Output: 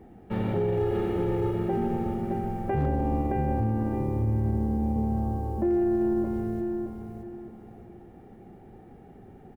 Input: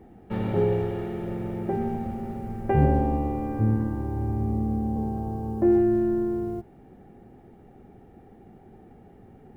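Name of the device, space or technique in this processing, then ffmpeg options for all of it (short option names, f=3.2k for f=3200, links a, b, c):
clipper into limiter: -filter_complex "[0:a]asettb=1/sr,asplit=3[a][b][c];[a]atrim=end=0.774[d];[b]atrim=start=0.77:end=1.54,asetpts=PTS-STARTPTS,afade=t=in:d=0.004:c=qsin,afade=t=out:st=0.766:d=0.004:c=qsin,aecho=1:1:2.4:0.94,atrim=end_sample=33957[e];[c]atrim=start=1.536[f];[d][e]acrossfade=d=0.004:c1=hsin:c2=qsin[g];[g][f]acrossfade=d=0.004:c1=qsin:c2=hsin,aecho=1:1:619|1238|1857|2476:0.501|0.145|0.0421|0.0122,asoftclip=type=hard:threshold=-12dB,alimiter=limit=-18.5dB:level=0:latency=1:release=35"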